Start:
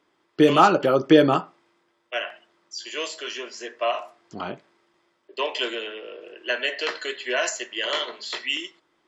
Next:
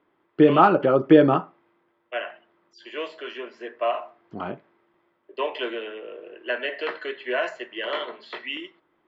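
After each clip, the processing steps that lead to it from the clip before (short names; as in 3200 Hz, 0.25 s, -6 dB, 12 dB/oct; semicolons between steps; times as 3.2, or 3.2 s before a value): air absorption 490 m; gain +2 dB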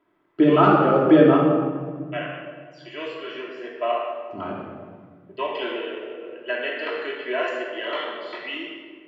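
shoebox room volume 2100 m³, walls mixed, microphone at 2.9 m; gain -3.5 dB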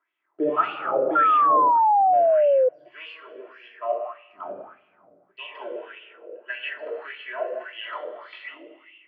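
wah 1.7 Hz 510–2900 Hz, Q 4.2; painted sound fall, 1.15–2.69, 500–1400 Hz -20 dBFS; gain +2.5 dB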